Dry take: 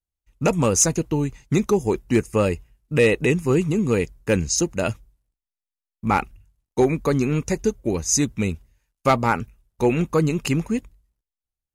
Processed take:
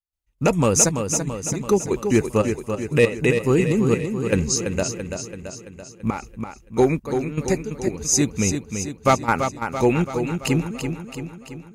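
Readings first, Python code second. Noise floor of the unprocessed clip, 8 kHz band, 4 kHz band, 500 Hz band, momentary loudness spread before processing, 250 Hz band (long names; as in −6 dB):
below −85 dBFS, +2.0 dB, +1.0 dB, +0.5 dB, 9 LU, 0.0 dB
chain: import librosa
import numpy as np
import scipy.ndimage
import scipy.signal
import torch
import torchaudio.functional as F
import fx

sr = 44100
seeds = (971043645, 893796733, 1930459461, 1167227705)

p1 = fx.step_gate(x, sr, bpm=118, pattern='.x.xxxx...xx', floor_db=-12.0, edge_ms=4.5)
p2 = p1 + fx.echo_feedback(p1, sr, ms=335, feedback_pct=57, wet_db=-7, dry=0)
y = F.gain(torch.from_numpy(p2), 1.0).numpy()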